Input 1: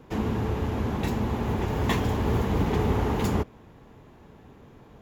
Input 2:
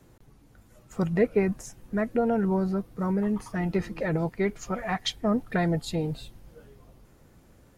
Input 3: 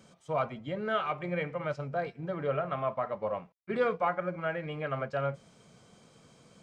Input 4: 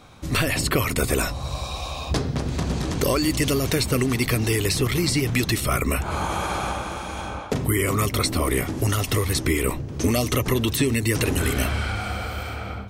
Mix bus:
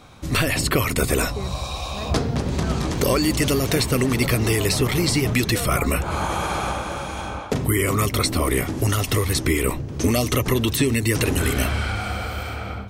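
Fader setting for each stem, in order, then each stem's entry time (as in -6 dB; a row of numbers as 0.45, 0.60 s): -8.0, -10.0, -5.0, +1.5 dB; 1.90, 0.00, 1.75, 0.00 s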